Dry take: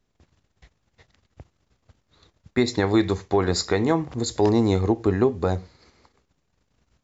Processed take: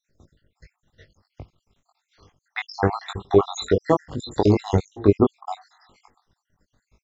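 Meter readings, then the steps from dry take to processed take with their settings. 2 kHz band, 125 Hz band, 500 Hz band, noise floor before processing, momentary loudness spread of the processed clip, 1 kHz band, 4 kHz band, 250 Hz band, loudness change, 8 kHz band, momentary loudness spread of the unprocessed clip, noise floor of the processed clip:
−2.0 dB, +0.5 dB, +1.0 dB, −73 dBFS, 15 LU, +1.5 dB, −3.5 dB, −1.5 dB, +0.5 dB, can't be measured, 6 LU, −82 dBFS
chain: time-frequency cells dropped at random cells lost 71%
double-tracking delay 20 ms −3.5 dB
level +4 dB

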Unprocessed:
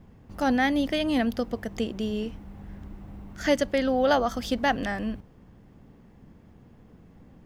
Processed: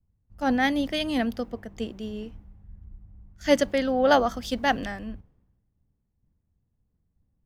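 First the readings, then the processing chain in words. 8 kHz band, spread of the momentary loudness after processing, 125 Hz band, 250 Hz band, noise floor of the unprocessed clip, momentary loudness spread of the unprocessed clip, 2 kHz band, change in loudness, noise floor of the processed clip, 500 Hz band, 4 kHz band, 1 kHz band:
+1.0 dB, 15 LU, −3.0 dB, −1.0 dB, −54 dBFS, 21 LU, +0.5 dB, +1.0 dB, −75 dBFS, +1.0 dB, +1.5 dB, +1.5 dB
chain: multiband upward and downward expander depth 100%
level −1.5 dB

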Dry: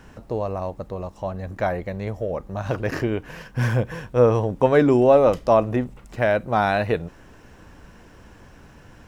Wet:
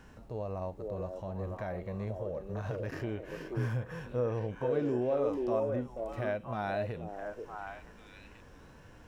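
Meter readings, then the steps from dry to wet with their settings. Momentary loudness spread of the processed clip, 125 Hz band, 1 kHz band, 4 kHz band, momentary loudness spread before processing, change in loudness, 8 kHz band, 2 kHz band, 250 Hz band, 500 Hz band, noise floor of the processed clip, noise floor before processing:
20 LU, −11.0 dB, −15.5 dB, below −10 dB, 15 LU, −13.5 dB, can't be measured, −14.5 dB, −13.0 dB, −13.5 dB, −54 dBFS, −48 dBFS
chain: downward compressor 2.5 to 1, threshold −28 dBFS, peak gain reduction 11.5 dB
harmonic and percussive parts rebalanced percussive −11 dB
echo through a band-pass that steps 483 ms, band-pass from 420 Hz, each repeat 1.4 octaves, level 0 dB
level −4.5 dB

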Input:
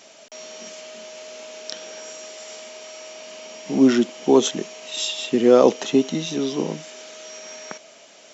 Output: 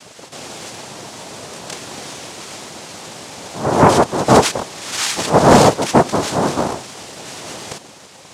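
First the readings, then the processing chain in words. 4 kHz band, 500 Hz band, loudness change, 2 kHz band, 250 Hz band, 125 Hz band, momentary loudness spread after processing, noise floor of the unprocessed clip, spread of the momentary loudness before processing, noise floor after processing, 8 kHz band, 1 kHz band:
+5.0 dB, +3.5 dB, +5.0 dB, +11.0 dB, +2.0 dB, +15.5 dB, 20 LU, −48 dBFS, 21 LU, −42 dBFS, can't be measured, +15.5 dB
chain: backwards echo 165 ms −12 dB
cochlear-implant simulation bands 2
sine wavefolder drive 5 dB, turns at 1.5 dBFS
level −3 dB

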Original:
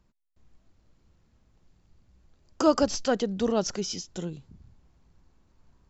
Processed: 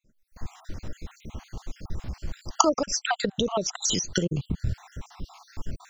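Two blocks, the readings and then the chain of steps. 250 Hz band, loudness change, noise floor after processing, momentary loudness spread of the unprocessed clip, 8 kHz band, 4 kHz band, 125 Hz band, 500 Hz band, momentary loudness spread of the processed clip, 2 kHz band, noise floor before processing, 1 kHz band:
−1.5 dB, +0.5 dB, −66 dBFS, 14 LU, can't be measured, +6.5 dB, +9.5 dB, −1.5 dB, 21 LU, +6.5 dB, −68 dBFS, +5.0 dB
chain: time-frequency cells dropped at random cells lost 59%
camcorder AGC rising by 78 dB per second
dynamic equaliser 240 Hz, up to −4 dB, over −39 dBFS, Q 1.7
level −1 dB

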